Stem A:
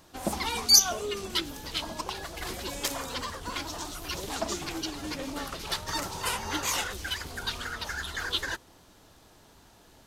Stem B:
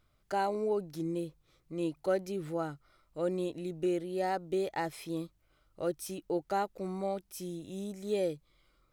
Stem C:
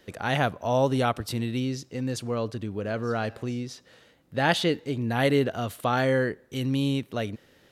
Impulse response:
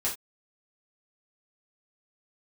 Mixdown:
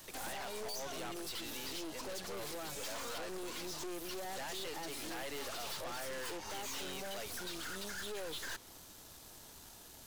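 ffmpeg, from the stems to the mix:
-filter_complex "[0:a]volume=1dB[link_01];[1:a]alimiter=level_in=2.5dB:limit=-24dB:level=0:latency=1,volume=-2.5dB,volume=1.5dB,asplit=2[link_02][link_03];[2:a]highpass=520,volume=-2.5dB[link_04];[link_03]apad=whole_len=443917[link_05];[link_01][link_05]sidechaincompress=threshold=-40dB:ratio=8:attack=16:release=316[link_06];[link_06][link_02][link_04]amix=inputs=3:normalize=0,acrossover=split=110|300|6000[link_07][link_08][link_09][link_10];[link_07]acompressor=threshold=-54dB:ratio=4[link_11];[link_08]acompressor=threshold=-49dB:ratio=4[link_12];[link_09]acompressor=threshold=-30dB:ratio=4[link_13];[link_10]acompressor=threshold=-54dB:ratio=4[link_14];[link_11][link_12][link_13][link_14]amix=inputs=4:normalize=0,crystalizer=i=2.5:c=0,aeval=exprs='(tanh(112*val(0)+0.7)-tanh(0.7))/112':channel_layout=same"

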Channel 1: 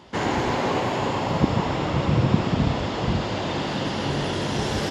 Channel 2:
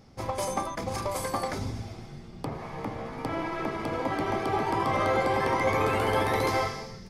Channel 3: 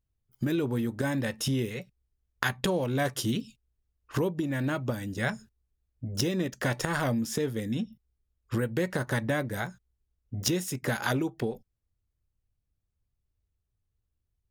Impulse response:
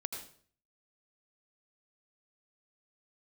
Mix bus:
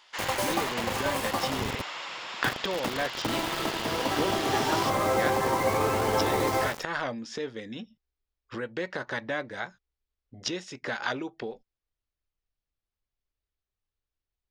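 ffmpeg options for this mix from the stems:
-filter_complex "[0:a]highpass=1500,volume=-2dB[link_01];[1:a]acrusher=bits=4:mix=0:aa=0.000001,adynamicequalizer=threshold=0.00794:dfrequency=1600:dqfactor=0.7:tfrequency=1600:tqfactor=0.7:attack=5:release=100:ratio=0.375:range=3:mode=cutabove:tftype=highshelf,volume=0.5dB[link_02];[2:a]lowpass=frequency=5300:width=0.5412,lowpass=frequency=5300:width=1.3066,equalizer=frequency=110:width_type=o:width=2.6:gain=-14.5,volume=0.5dB[link_03];[link_01][link_02][link_03]amix=inputs=3:normalize=0,lowshelf=frequency=82:gain=-5.5"

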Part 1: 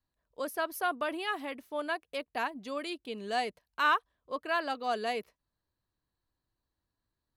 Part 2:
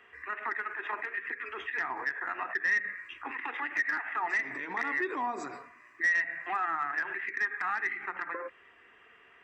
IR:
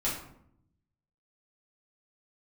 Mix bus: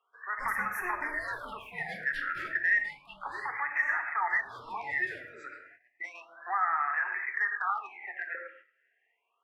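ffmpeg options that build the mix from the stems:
-filter_complex "[0:a]asoftclip=type=tanh:threshold=-23.5dB,aeval=exprs='val(0)*sin(2*PI*450*n/s+450*0.35/0.41*sin(2*PI*0.41*n/s))':channel_layout=same,volume=-5.5dB,afade=type=out:start_time=2.29:duration=0.32:silence=0.334965,asplit=2[link_01][link_02];[link_02]volume=-5.5dB[link_03];[1:a]acrossover=split=520 2500:gain=0.0891 1 0.1[link_04][link_05][link_06];[link_04][link_05][link_06]amix=inputs=3:normalize=0,volume=1.5dB,asplit=2[link_07][link_08];[link_08]volume=-10.5dB[link_09];[2:a]atrim=start_sample=2205[link_10];[link_03][link_09]amix=inputs=2:normalize=0[link_11];[link_11][link_10]afir=irnorm=-1:irlink=0[link_12];[link_01][link_07][link_12]amix=inputs=3:normalize=0,agate=range=-15dB:threshold=-51dB:ratio=16:detection=peak,lowshelf=frequency=300:gain=-12,afftfilt=real='re*(1-between(b*sr/1024,890*pow(3900/890,0.5+0.5*sin(2*PI*0.32*pts/sr))/1.41,890*pow(3900/890,0.5+0.5*sin(2*PI*0.32*pts/sr))*1.41))':imag='im*(1-between(b*sr/1024,890*pow(3900/890,0.5+0.5*sin(2*PI*0.32*pts/sr))/1.41,890*pow(3900/890,0.5+0.5*sin(2*PI*0.32*pts/sr))*1.41))':win_size=1024:overlap=0.75"

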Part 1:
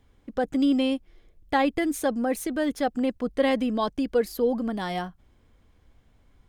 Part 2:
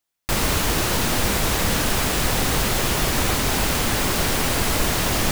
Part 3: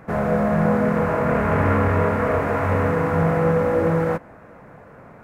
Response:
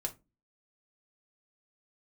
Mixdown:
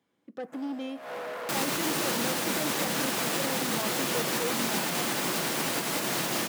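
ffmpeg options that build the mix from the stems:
-filter_complex "[0:a]asoftclip=type=tanh:threshold=-22.5dB,volume=-11dB,asplit=3[link_01][link_02][link_03];[link_02]volume=-7.5dB[link_04];[1:a]alimiter=limit=-13dB:level=0:latency=1:release=114,adelay=1200,volume=-7dB,asplit=2[link_05][link_06];[link_06]volume=-9dB[link_07];[2:a]highpass=frequency=470:width=0.5412,highpass=frequency=470:width=1.3066,highshelf=frequency=6700:gain=12,asoftclip=type=tanh:threshold=-28.5dB,adelay=450,volume=-5.5dB[link_08];[link_03]apad=whole_len=250887[link_09];[link_08][link_09]sidechaincompress=threshold=-52dB:ratio=5:attack=16:release=164[link_10];[3:a]atrim=start_sample=2205[link_11];[link_04][link_07]amix=inputs=2:normalize=0[link_12];[link_12][link_11]afir=irnorm=-1:irlink=0[link_13];[link_01][link_05][link_10][link_13]amix=inputs=4:normalize=0,highpass=frequency=160:width=0.5412,highpass=frequency=160:width=1.3066"

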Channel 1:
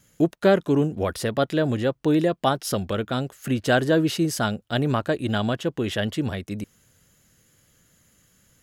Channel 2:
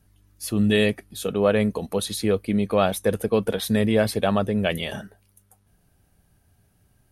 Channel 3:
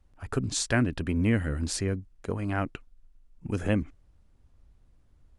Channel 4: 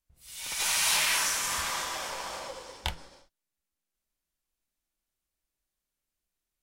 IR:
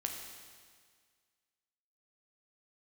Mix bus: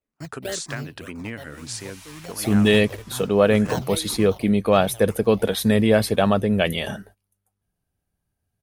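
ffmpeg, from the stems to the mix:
-filter_complex "[0:a]equalizer=frequency=125:width_type=o:width=1:gain=8,equalizer=frequency=250:width_type=o:width=1:gain=-12,equalizer=frequency=2000:width_type=o:width=1:gain=4,equalizer=frequency=8000:width_type=o:width=1:gain=8,acrusher=samples=25:mix=1:aa=0.000001:lfo=1:lforange=15:lforate=3.4,asplit=2[link_01][link_02];[link_02]afreqshift=-2[link_03];[link_01][link_03]amix=inputs=2:normalize=1,afade=type=out:start_time=0.76:duration=0.42:silence=0.375837,afade=type=in:start_time=2.01:duration=0.79:silence=0.334965,afade=type=out:start_time=4.09:duration=0.34:silence=0.334965[link_04];[1:a]adelay=1950,volume=3dB[link_05];[2:a]highpass=110,lowshelf=frequency=490:gain=-11,acompressor=threshold=-30dB:ratio=6,volume=2dB[link_06];[3:a]alimiter=limit=-17.5dB:level=0:latency=1:release=373,adelay=1150,volume=-17.5dB[link_07];[link_04][link_05][link_06][link_07]amix=inputs=4:normalize=0,agate=range=-19dB:threshold=-47dB:ratio=16:detection=peak"

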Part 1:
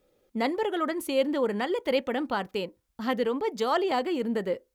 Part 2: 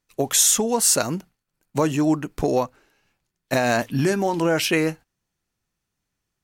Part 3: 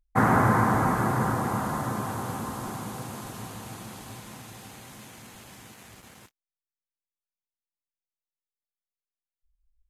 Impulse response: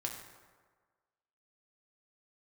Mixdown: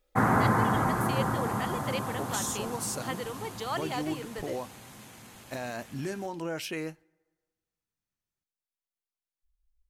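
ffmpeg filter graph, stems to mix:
-filter_complex "[0:a]highpass=frequency=1000:poles=1,volume=-3.5dB[link_01];[1:a]alimiter=limit=-10dB:level=0:latency=1,adelay=2000,volume=-14.5dB,asplit=2[link_02][link_03];[link_03]volume=-24dB[link_04];[2:a]volume=-3dB[link_05];[3:a]atrim=start_sample=2205[link_06];[link_04][link_06]afir=irnorm=-1:irlink=0[link_07];[link_01][link_02][link_05][link_07]amix=inputs=4:normalize=0"

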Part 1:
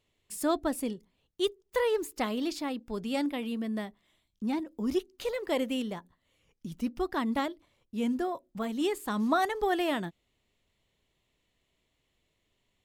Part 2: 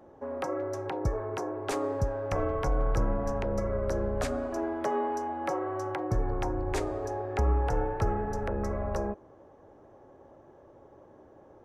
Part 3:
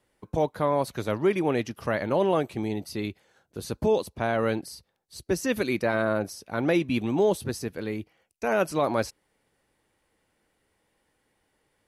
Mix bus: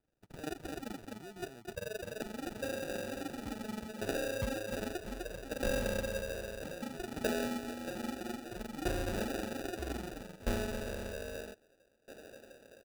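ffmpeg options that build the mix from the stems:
ffmpeg -i stem1.wav -i stem2.wav -i stem3.wav -filter_complex "[0:a]tremolo=f=23:d=0.974,volume=-5.5dB,asplit=2[link_01][link_02];[link_02]volume=-4dB[link_03];[1:a]equalizer=frequency=620:width_type=o:width=0.98:gain=13.5,aeval=exprs='val(0)*pow(10,-26*if(lt(mod(0.62*n/s,1),2*abs(0.62)/1000),1-mod(0.62*n/s,1)/(2*abs(0.62)/1000),(mod(0.62*n/s,1)-2*abs(0.62)/1000)/(1-2*abs(0.62)/1000))/20)':channel_layout=same,adelay=2400,volume=-3dB[link_04];[2:a]alimiter=limit=-24dB:level=0:latency=1:release=132,volume=-17dB[link_05];[link_03]aecho=0:1:253:1[link_06];[link_01][link_04][link_05][link_06]amix=inputs=4:normalize=0,acrossover=split=250[link_07][link_08];[link_08]acompressor=threshold=-47dB:ratio=1.5[link_09];[link_07][link_09]amix=inputs=2:normalize=0,acrusher=samples=41:mix=1:aa=0.000001" out.wav

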